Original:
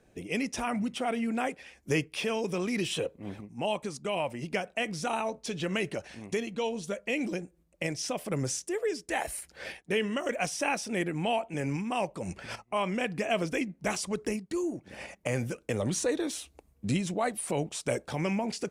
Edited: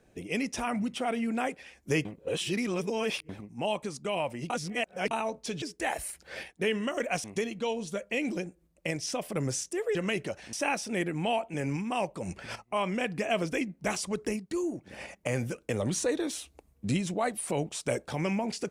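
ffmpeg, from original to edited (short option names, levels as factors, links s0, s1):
-filter_complex "[0:a]asplit=9[s0][s1][s2][s3][s4][s5][s6][s7][s8];[s0]atrim=end=2.052[s9];[s1]atrim=start=2.048:end=3.292,asetpts=PTS-STARTPTS,areverse[s10];[s2]atrim=start=3.288:end=4.502[s11];[s3]atrim=start=4.498:end=5.112,asetpts=PTS-STARTPTS,areverse[s12];[s4]atrim=start=5.108:end=5.622[s13];[s5]atrim=start=8.908:end=10.532[s14];[s6]atrim=start=6.198:end=8.912[s15];[s7]atrim=start=5.618:end=6.202[s16];[s8]atrim=start=10.528[s17];[s9][s10]acrossfade=d=0.004:c1=hsin:c2=hsin[s18];[s18][s11]acrossfade=d=0.004:c1=hsin:c2=hsin[s19];[s19][s12]acrossfade=d=0.004:c1=hsin:c2=hsin[s20];[s20][s13]acrossfade=d=0.004:c1=hsin:c2=hsin[s21];[s21][s14]acrossfade=d=0.004:c1=hsin:c2=hsin[s22];[s22][s15]acrossfade=d=0.004:c1=hsin:c2=hsin[s23];[s23][s16]acrossfade=d=0.004:c1=hsin:c2=hsin[s24];[s24][s17]acrossfade=d=0.004:c1=hsin:c2=hsin"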